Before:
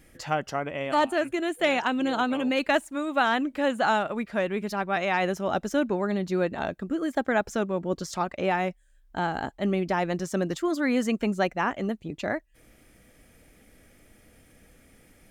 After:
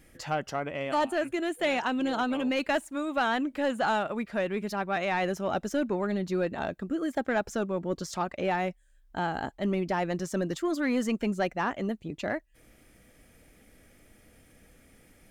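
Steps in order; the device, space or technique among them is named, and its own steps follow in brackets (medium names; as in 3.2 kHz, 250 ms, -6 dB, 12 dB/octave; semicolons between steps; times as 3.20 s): saturation between pre-emphasis and de-emphasis (treble shelf 3.5 kHz +10 dB; saturation -16.5 dBFS, distortion -17 dB; treble shelf 3.5 kHz -10 dB); trim -1.5 dB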